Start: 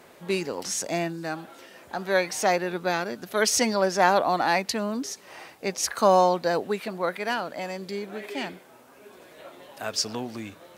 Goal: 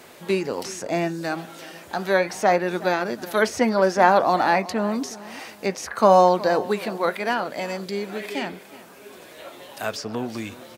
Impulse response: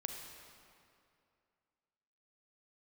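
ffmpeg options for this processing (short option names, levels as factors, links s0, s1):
-filter_complex "[0:a]acrossover=split=2200[s0][s1];[s0]flanger=delay=8.2:depth=2.1:regen=-72:speed=0.28:shape=triangular[s2];[s1]acompressor=threshold=0.00631:ratio=6[s3];[s2][s3]amix=inputs=2:normalize=0,aecho=1:1:366|732|1098:0.126|0.0441|0.0154,volume=2.66"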